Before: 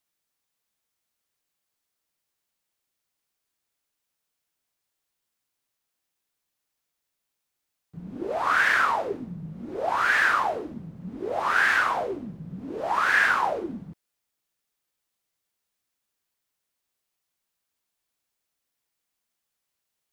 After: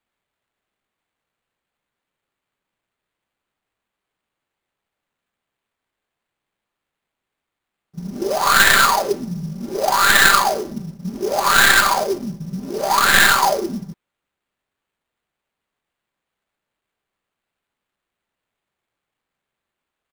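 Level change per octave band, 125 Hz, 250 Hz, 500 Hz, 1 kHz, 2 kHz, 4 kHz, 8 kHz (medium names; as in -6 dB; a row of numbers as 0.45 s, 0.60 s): +10.0 dB, +9.0 dB, +8.5 dB, +8.0 dB, +7.0 dB, +18.0 dB, +23.5 dB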